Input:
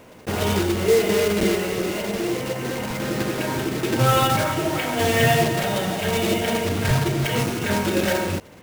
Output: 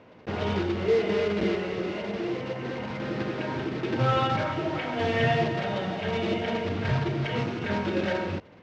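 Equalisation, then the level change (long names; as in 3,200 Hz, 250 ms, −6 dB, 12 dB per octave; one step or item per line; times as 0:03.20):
high-pass filter 63 Hz
Bessel low-pass filter 3,200 Hz, order 6
−5.5 dB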